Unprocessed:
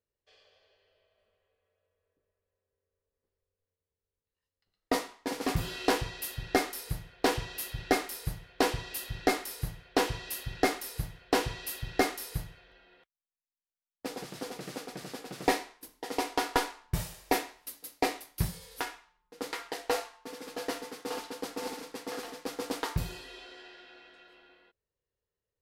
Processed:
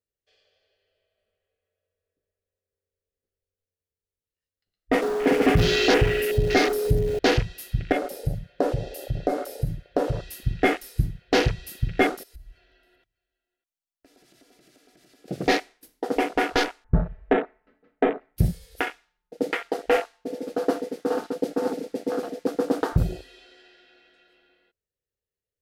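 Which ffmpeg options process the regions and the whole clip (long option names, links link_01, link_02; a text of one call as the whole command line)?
ffmpeg -i in.wav -filter_complex "[0:a]asettb=1/sr,asplit=3[link_01][link_02][link_03];[link_01]atrim=end=5.024[link_04];[link_02]atrim=start=5.02:end=7.19,asetpts=PTS-STARTPTS,afade=type=in:duration=0.004:curve=qsin,afade=type=out:start_time=2.166:duration=0.004:curve=qsin,aeval=exprs='val(0)+0.5*0.0158*sgn(val(0))':channel_layout=same,aeval=exprs='val(0)+0.0158*sin(2*PI*420*n/s)':channel_layout=same[link_05];[link_03]atrim=start=7.186[link_06];[link_04][link_05]acrossfade=duration=0.004:curve1=hsin:curve2=qsin[link_07];[link_07][link_06]acrossfade=duration=0.004:curve1=qsin:curve2=hsin,asettb=1/sr,asplit=3[link_08][link_09][link_10];[link_08]atrim=end=7.924[link_11];[link_09]atrim=start=7.92:end=10.24,asetpts=PTS-STARTPTS,afade=type=in:duration=0.004:curve=qsin,afade=type=out:start_time=2.316:duration=0.004:curve=qsin,equalizer=frequency=570:width_type=o:width=0.32:gain=12.5,aecho=1:1:7:0.37,atrim=end_sample=102312,acompressor=threshold=-34dB:ratio=2.5:attack=3.2:release=140:knee=1:detection=peak[link_12];[link_10]atrim=start=10.236[link_13];[link_11][link_12]acrossfade=duration=0.004:curve1=hsin:curve2=qsin[link_14];[link_14][link_13]acrossfade=duration=0.004:curve1=qsin:curve2=hsin,asettb=1/sr,asplit=3[link_15][link_16][link_17];[link_15]atrim=end=12.234[link_18];[link_16]atrim=start=12.23:end=15.28,asetpts=PTS-STARTPTS,afade=type=in:duration=0.004:curve=qsin,afade=type=out:start_time=3.046:duration=0.004:curve=qsin,acompressor=threshold=-52dB:ratio=6:attack=3.2:release=140:knee=1:detection=peak,aecho=1:1:3:0.52,atrim=end_sample=134505,aecho=1:1:600:0.0668,atrim=end_sample=134505[link_19];[link_17]atrim=start=15.276[link_20];[link_18][link_19]acrossfade=duration=0.004:curve1=hsin:curve2=qsin[link_21];[link_21][link_20]acrossfade=duration=0.004:curve1=qsin:curve2=hsin,asettb=1/sr,asplit=3[link_22][link_23][link_24];[link_22]atrim=end=16.844[link_25];[link_23]atrim=start=16.84:end=18.37,asetpts=PTS-STARTPTS,afade=type=in:duration=0.004:curve=qsin,afade=type=out:start_time=1.526:duration=0.004:curve=qsin,lowpass=frequency=1700:width=0.5412,lowpass=frequency=1700:width=1.3066,volume=19.5dB,asoftclip=hard,volume=-19.5dB,aecho=1:1:4.6:0.62,atrim=end_sample=67473[link_26];[link_24]atrim=start=18.366[link_27];[link_25][link_26]acrossfade=duration=0.004:curve1=hsin:curve2=qsin[link_28];[link_28][link_27]acrossfade=duration=0.004:curve1=qsin:curve2=hsin,afwtdn=0.0126,equalizer=frequency=1000:width=2.9:gain=-11,alimiter=level_in=21dB:limit=-1dB:release=50:level=0:latency=1,volume=-7.5dB" out.wav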